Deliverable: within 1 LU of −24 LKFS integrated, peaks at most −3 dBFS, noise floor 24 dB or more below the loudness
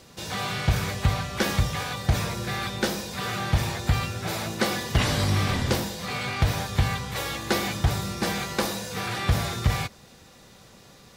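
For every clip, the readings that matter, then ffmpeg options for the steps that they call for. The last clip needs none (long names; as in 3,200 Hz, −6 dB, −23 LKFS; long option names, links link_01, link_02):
integrated loudness −27.0 LKFS; sample peak −11.0 dBFS; target loudness −24.0 LKFS
→ -af "volume=3dB"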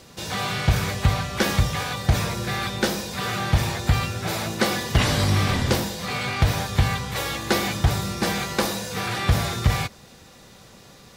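integrated loudness −24.0 LKFS; sample peak −8.0 dBFS; background noise floor −48 dBFS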